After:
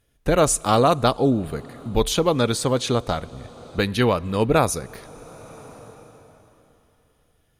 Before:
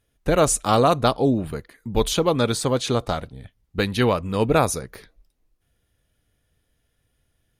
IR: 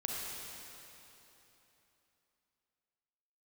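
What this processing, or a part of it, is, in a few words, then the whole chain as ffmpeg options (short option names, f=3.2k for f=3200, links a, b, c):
ducked reverb: -filter_complex "[0:a]asplit=3[a][b][c];[1:a]atrim=start_sample=2205[d];[b][d]afir=irnorm=-1:irlink=0[e];[c]apad=whole_len=335020[f];[e][f]sidechaincompress=threshold=-36dB:ratio=8:attack=25:release=705,volume=-5.5dB[g];[a][g]amix=inputs=2:normalize=0"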